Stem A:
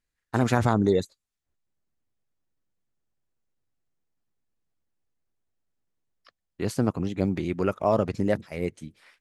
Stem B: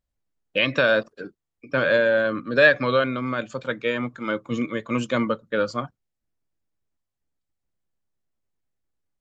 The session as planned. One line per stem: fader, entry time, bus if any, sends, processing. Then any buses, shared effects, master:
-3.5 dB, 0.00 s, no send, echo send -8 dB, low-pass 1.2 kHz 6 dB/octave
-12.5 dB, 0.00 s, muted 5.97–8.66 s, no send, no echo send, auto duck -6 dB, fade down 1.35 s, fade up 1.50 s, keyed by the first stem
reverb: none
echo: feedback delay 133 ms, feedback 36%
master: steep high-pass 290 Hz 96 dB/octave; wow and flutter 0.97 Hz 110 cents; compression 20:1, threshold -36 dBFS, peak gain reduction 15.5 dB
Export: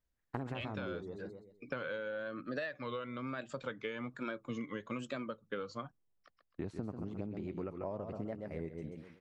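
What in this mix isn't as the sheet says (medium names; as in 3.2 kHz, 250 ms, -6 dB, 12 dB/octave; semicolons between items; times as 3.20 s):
stem B -12.5 dB -> -4.0 dB; master: missing steep high-pass 290 Hz 96 dB/octave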